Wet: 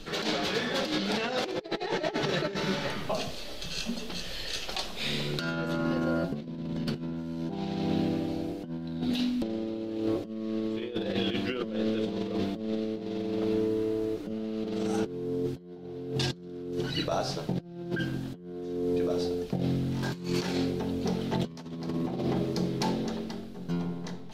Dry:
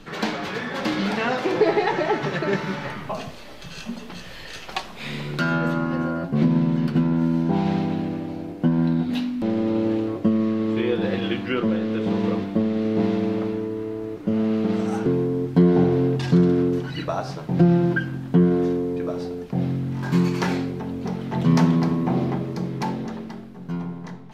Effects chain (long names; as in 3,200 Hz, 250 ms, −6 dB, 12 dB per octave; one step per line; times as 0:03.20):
graphic EQ with 10 bands 125 Hz −8 dB, 250 Hz −4 dB, 1,000 Hz −8 dB, 2,000 Hz −6 dB, 4,000 Hz +4 dB
compressor whose output falls as the input rises −30 dBFS, ratio −0.5